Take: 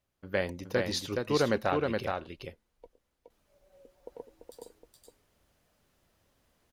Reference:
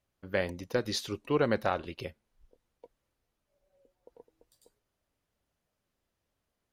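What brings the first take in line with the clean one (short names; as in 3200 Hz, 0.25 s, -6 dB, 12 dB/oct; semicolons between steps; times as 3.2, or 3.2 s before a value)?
inverse comb 0.42 s -3.5 dB; gain correction -10 dB, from 3.3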